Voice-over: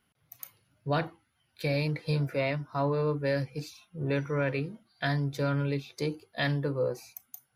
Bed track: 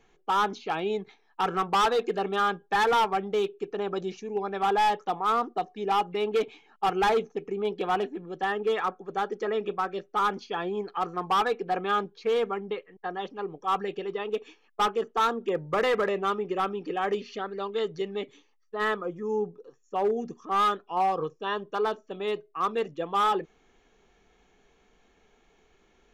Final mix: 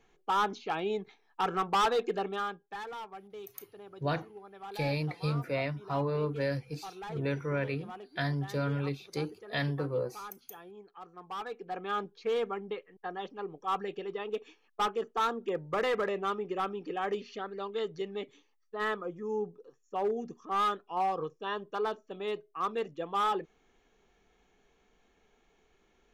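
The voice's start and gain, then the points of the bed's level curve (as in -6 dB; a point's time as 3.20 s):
3.15 s, -3.0 dB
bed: 2.17 s -3.5 dB
2.88 s -19 dB
11.07 s -19 dB
12.09 s -5 dB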